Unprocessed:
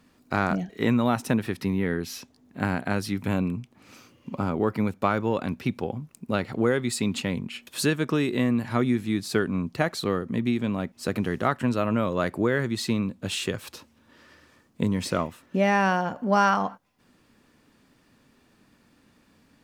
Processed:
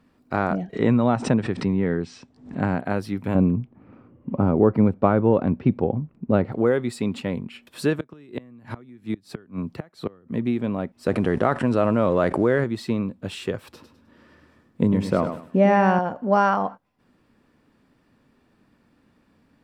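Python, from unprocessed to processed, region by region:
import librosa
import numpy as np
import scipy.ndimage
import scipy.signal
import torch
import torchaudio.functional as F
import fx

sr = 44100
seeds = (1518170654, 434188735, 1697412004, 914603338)

y = fx.chain(x, sr, fx.brickwall_lowpass(high_hz=9100.0),
    fx.peak_eq(hz=140.0, db=5.0, octaves=1.1),
    fx.pre_swell(db_per_s=130.0), at=(0.73, 2.8))
y = fx.chain(y, sr, fx.lowpass(hz=2300.0, slope=6),
    fx.env_lowpass(base_hz=1300.0, full_db=-23.5),
    fx.low_shelf(hz=430.0, db=8.5), at=(3.35, 6.52))
y = fx.chain(y, sr, fx.gate_flip(shuts_db=-16.0, range_db=-25),
    fx.band_squash(depth_pct=40), at=(7.99, 10.35))
y = fx.chain(y, sr, fx.law_mismatch(coded='A'),
    fx.resample_bad(factor=2, down='none', up='filtered'),
    fx.env_flatten(amount_pct=70), at=(11.06, 12.64))
y = fx.chain(y, sr, fx.peak_eq(hz=190.0, db=4.5, octaves=2.1),
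    fx.echo_feedback(ms=103, feedback_pct=31, wet_db=-8.5), at=(13.68, 15.99))
y = fx.high_shelf(y, sr, hz=2800.0, db=-10.5)
y = fx.notch(y, sr, hz=6500.0, q=13.0)
y = fx.dynamic_eq(y, sr, hz=570.0, q=0.85, threshold_db=-35.0, ratio=4.0, max_db=5)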